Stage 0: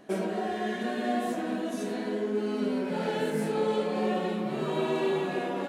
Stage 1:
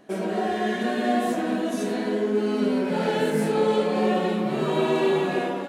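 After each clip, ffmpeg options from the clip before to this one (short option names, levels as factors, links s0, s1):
-af "dynaudnorm=f=100:g=5:m=2"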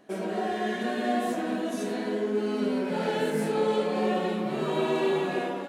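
-af "lowshelf=f=130:g=-5,volume=0.668"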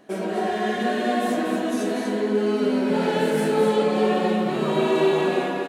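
-af "aecho=1:1:242:0.531,volume=1.68"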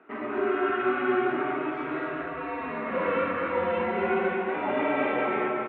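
-af "highpass=f=570:t=q:w=0.5412,highpass=f=570:t=q:w=1.307,lowpass=f=2700:t=q:w=0.5176,lowpass=f=2700:t=q:w=0.7071,lowpass=f=2700:t=q:w=1.932,afreqshift=-350,highpass=310,volume=1.5"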